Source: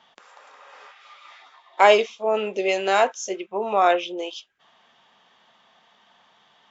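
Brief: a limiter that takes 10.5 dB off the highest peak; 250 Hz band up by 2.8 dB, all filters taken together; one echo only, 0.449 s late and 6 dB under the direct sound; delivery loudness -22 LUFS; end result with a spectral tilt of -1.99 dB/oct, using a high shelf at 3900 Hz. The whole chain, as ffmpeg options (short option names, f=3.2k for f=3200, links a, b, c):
-af "equalizer=f=250:t=o:g=5,highshelf=f=3.9k:g=-7,alimiter=limit=-13dB:level=0:latency=1,aecho=1:1:449:0.501,volume=2dB"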